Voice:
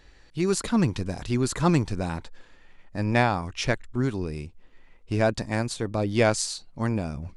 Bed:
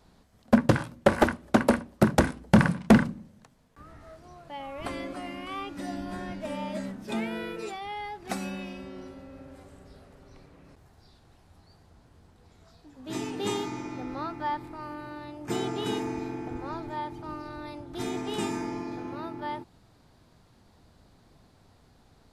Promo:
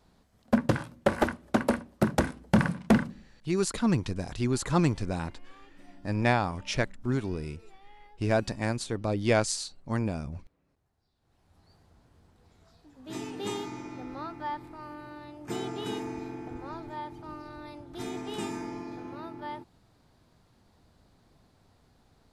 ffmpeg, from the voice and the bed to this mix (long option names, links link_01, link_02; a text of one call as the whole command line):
ffmpeg -i stem1.wav -i stem2.wav -filter_complex "[0:a]adelay=3100,volume=-3dB[link_01];[1:a]volume=12dB,afade=type=out:start_time=2.9:duration=0.65:silence=0.158489,afade=type=in:start_time=11.16:duration=0.54:silence=0.158489[link_02];[link_01][link_02]amix=inputs=2:normalize=0" out.wav